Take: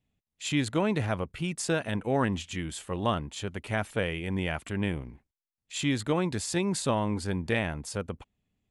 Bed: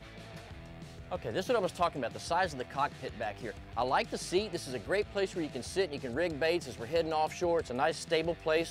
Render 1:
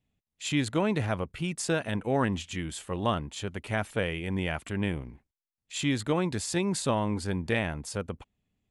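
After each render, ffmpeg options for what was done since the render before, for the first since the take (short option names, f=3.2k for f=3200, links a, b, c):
-af anull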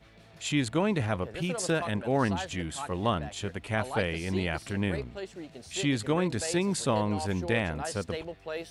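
-filter_complex "[1:a]volume=-7dB[a];[0:a][a]amix=inputs=2:normalize=0"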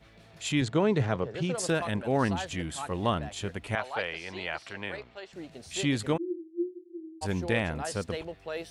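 -filter_complex "[0:a]asettb=1/sr,asplit=3[a][b][c];[a]atrim=end=0.614[d];[b]atrim=start=0.61:end=1.55,asetpts=PTS-STARTPTS,afade=t=in:d=0.004:c=qsin,afade=t=out:st=0.936:d=0.004:c=qsin,highpass=100,equalizer=f=130:t=q:w=4:g=8,equalizer=f=420:t=q:w=4:g=6,equalizer=f=2.5k:t=q:w=4:g=-4,lowpass=f=7.2k:w=0.5412,lowpass=f=7.2k:w=1.3066[e];[c]atrim=start=1.546[f];[d][e]acrossfade=d=0.004:c1=hsin:c2=qsin[g];[g][f]acrossfade=d=0.004:c1=qsin:c2=hsin,asettb=1/sr,asplit=3[h][i][j];[h]atrim=end=3.754[k];[i]atrim=start=3.75:end=5.33,asetpts=PTS-STARTPTS,afade=t=in:d=0.004:c=qsin,afade=t=out:st=1.576:d=0.004:c=qsin,acrossover=split=500 6000:gain=0.158 1 0.126[l][m][n];[l][m][n]amix=inputs=3:normalize=0[o];[j]atrim=start=5.326[p];[k][o]acrossfade=d=0.004:c1=hsin:c2=qsin[q];[q][p]acrossfade=d=0.004:c1=qsin:c2=hsin,asplit=3[r][s][t];[r]afade=t=out:st=6.16:d=0.02[u];[s]asuperpass=centerf=340:order=20:qfactor=7.2,afade=t=in:st=6.16:d=0.02,afade=t=out:st=7.21:d=0.02[v];[t]afade=t=in:st=7.21:d=0.02[w];[u][v][w]amix=inputs=3:normalize=0"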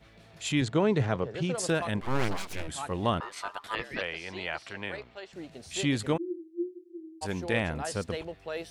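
-filter_complex "[0:a]asplit=3[a][b][c];[a]afade=t=out:st=2:d=0.02[d];[b]aeval=exprs='abs(val(0))':c=same,afade=t=in:st=2:d=0.02,afade=t=out:st=2.67:d=0.02[e];[c]afade=t=in:st=2.67:d=0.02[f];[d][e][f]amix=inputs=3:normalize=0,asettb=1/sr,asplit=3[g][h][i];[g]atrim=end=3.204[j];[h]atrim=start=3.2:end=4.01,asetpts=PTS-STARTPTS,afade=t=in:d=0.004:c=qsin,afade=t=out:st=0.806:d=0.004:c=qsin,aeval=exprs='val(0)*sin(2*PI*1100*n/s)':c=same[k];[i]atrim=start=4.006[l];[j][k]acrossfade=d=0.004:c1=hsin:c2=qsin[m];[m][l]acrossfade=d=0.004:c1=qsin:c2=hsin,asplit=3[n][o][p];[n]afade=t=out:st=6.21:d=0.02[q];[o]lowshelf=f=190:g=-7,afade=t=in:st=6.21:d=0.02,afade=t=out:st=7.53:d=0.02[r];[p]afade=t=in:st=7.53:d=0.02[s];[q][r][s]amix=inputs=3:normalize=0"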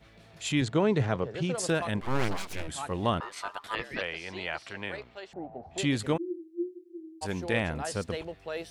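-filter_complex "[0:a]asettb=1/sr,asplit=3[a][b][c];[a]atrim=end=5.334[d];[b]atrim=start=5.33:end=5.78,asetpts=PTS-STARTPTS,afade=t=in:d=0.004:c=qsin,afade=t=out:st=0.446:d=0.004:c=qsin,lowpass=f=780:t=q:w=7.2[e];[c]atrim=start=5.776[f];[d][e]acrossfade=d=0.004:c1=hsin:c2=qsin[g];[g][f]acrossfade=d=0.004:c1=qsin:c2=hsin"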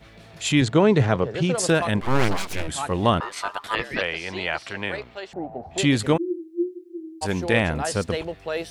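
-af "volume=8dB"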